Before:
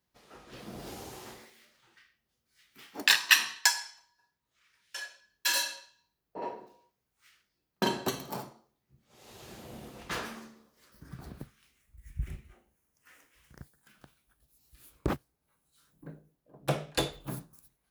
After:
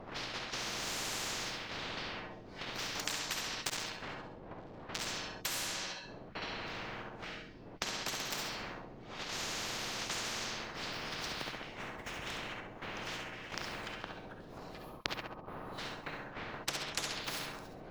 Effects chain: 3.55–5.07 switching dead time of 0.24 ms; wind noise 220 Hz -49 dBFS; 14.77–15.78 spectral gain 1300–10000 Hz -15 dB; gate -50 dBFS, range -12 dB; bell 63 Hz -13.5 dB 0.79 oct; compressor 6:1, threshold -40 dBFS, peak gain reduction 23 dB; air absorption 210 m; flutter echo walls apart 11.5 m, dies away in 0.45 s; reverb, pre-delay 50 ms, DRR 7 dB; spectral compressor 10:1; gain +12 dB

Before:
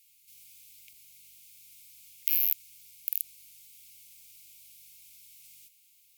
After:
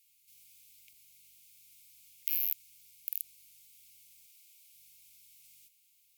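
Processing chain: 4.26–4.74 Chebyshev high-pass 360 Hz, order 8; gain -5.5 dB

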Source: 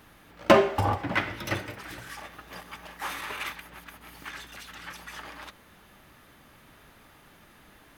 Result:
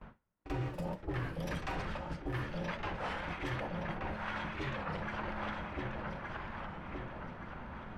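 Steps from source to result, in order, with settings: echo with dull and thin repeats by turns 0.585 s, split 1000 Hz, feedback 69%, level -3 dB; frequency shift -270 Hz; low shelf 150 Hz +4.5 dB; on a send: reverse echo 46 ms -12 dB; on the sum: low-pass opened by the level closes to 1500 Hz, open at -20.5 dBFS; reverse; compressor 16:1, threshold -40 dBFS, peak gain reduction 31.5 dB; reverse; gate with hold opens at -45 dBFS; record warp 33 1/3 rpm, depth 160 cents; gain +5.5 dB

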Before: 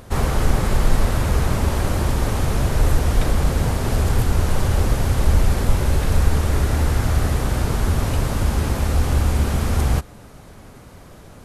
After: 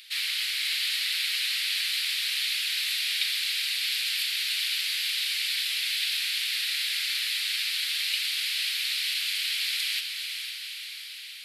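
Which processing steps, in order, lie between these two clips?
steep high-pass 2200 Hz 36 dB/oct; resonant high shelf 5200 Hz -6.5 dB, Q 3; diffused feedback echo 0.491 s, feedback 62%, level -6 dB; gain +6.5 dB

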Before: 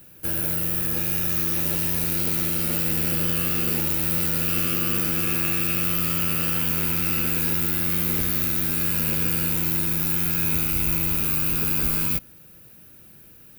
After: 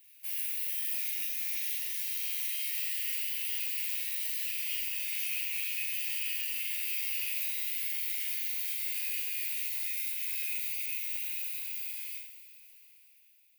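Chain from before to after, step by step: ending faded out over 3.94 s; steep high-pass 1900 Hz 72 dB/oct; high shelf 5100 Hz -5.5 dB; limiter -19.5 dBFS, peak gain reduction 6 dB; flutter echo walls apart 7.1 m, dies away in 0.41 s; two-slope reverb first 0.44 s, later 4.7 s, from -18 dB, DRR -1 dB; gain -7 dB

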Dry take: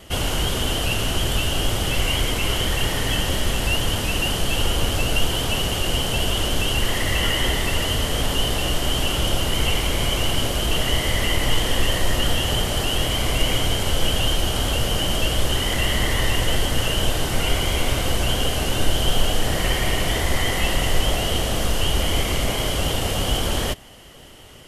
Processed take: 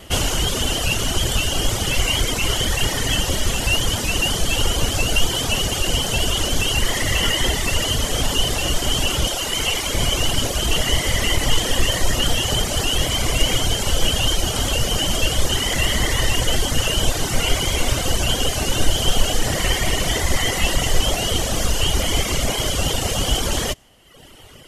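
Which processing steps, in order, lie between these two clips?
9.27–9.95 low shelf 220 Hz -9 dB; reverb removal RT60 1.1 s; dynamic EQ 6500 Hz, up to +7 dB, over -48 dBFS, Q 1.4; gain +3.5 dB

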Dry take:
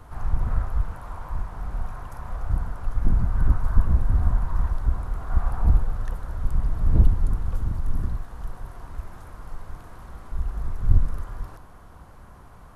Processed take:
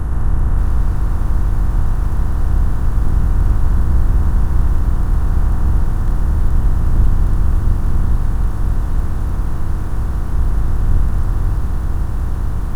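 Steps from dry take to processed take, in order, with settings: per-bin compression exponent 0.2; lo-fi delay 0.575 s, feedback 35%, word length 6-bit, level -9 dB; gain -2.5 dB

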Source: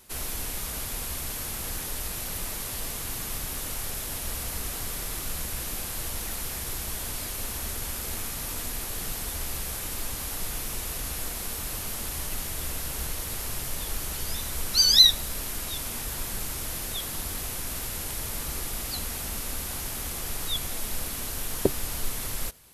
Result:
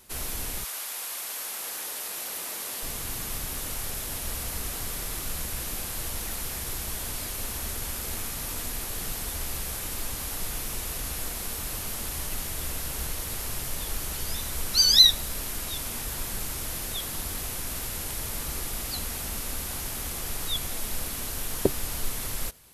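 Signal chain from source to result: 0.63–2.82 HPF 810 Hz -> 290 Hz 12 dB/oct

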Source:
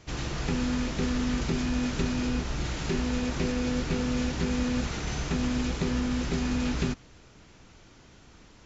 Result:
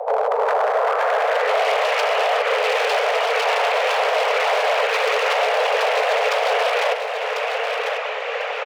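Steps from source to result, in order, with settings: low-pass sweep 290 Hz -> 2100 Hz, 0.04–1.7; compressor 2.5:1, threshold -47 dBFS, peak gain reduction 16.5 dB; whisperiser; bell 820 Hz +4 dB 1 oct; wavefolder -39.5 dBFS; frequency shift +420 Hz; on a send: feedback echo 1.046 s, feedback 27%, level -7.5 dB; on the sum: maximiser +35 dB; gain -9 dB

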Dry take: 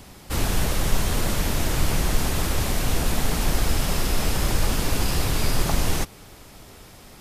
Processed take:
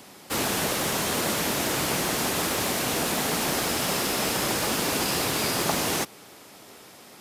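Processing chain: HPF 230 Hz 12 dB/oct; in parallel at -10 dB: bit-crush 6-bit

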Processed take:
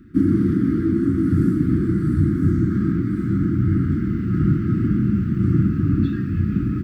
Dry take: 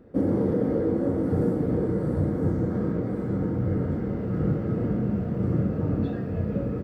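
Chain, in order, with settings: elliptic band-stop 330–1300 Hz, stop band 40 dB; gain +8 dB

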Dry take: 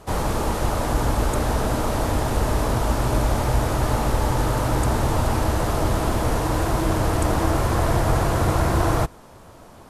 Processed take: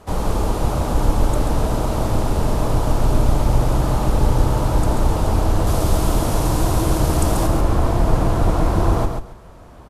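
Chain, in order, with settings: octaver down 2 oct, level +3 dB; high shelf 4000 Hz -3 dB, from 5.67 s +5.5 dB, from 7.47 s -7 dB; feedback echo 0.137 s, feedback 19%, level -5.5 dB; dynamic EQ 1800 Hz, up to -6 dB, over -45 dBFS, Q 1.8

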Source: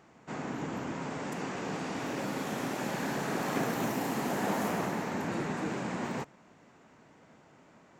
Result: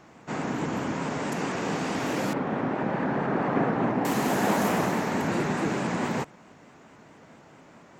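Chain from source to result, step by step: 2.33–4.05 LPF 1600 Hz 12 dB/oct; shaped vibrato saw up 4.6 Hz, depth 100 cents; gain +7 dB

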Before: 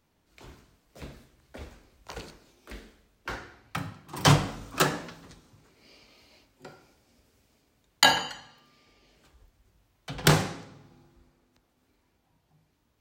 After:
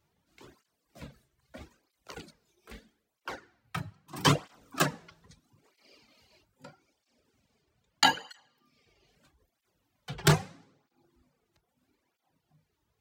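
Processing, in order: reverb removal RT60 0.79 s; 6.67–8.06 bell 13000 Hz -8.5 dB 1 oct; tape flanging out of phase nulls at 0.78 Hz, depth 4.2 ms

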